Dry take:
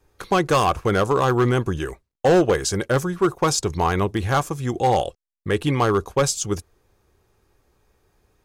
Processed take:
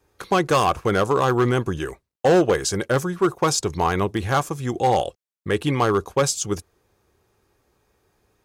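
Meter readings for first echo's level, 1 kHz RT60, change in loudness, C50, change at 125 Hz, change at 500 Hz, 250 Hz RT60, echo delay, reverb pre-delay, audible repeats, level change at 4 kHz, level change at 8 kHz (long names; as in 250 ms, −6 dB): no echo audible, no reverb audible, −0.5 dB, no reverb audible, −2.0 dB, 0.0 dB, no reverb audible, no echo audible, no reverb audible, no echo audible, 0.0 dB, 0.0 dB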